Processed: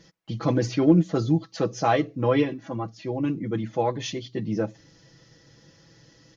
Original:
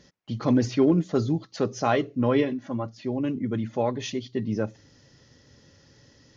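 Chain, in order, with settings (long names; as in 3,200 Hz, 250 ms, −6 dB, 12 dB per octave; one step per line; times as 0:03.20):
comb filter 6.1 ms, depth 69%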